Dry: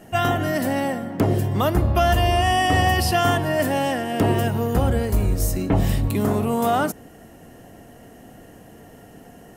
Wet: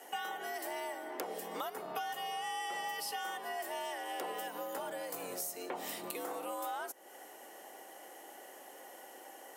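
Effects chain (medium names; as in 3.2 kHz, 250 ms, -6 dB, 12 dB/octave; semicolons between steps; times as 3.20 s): high-pass 480 Hz 12 dB/octave; treble shelf 5.9 kHz +5 dB; compression 6:1, threshold -35 dBFS, peak gain reduction 17 dB; frequency shift +80 Hz; trim -3 dB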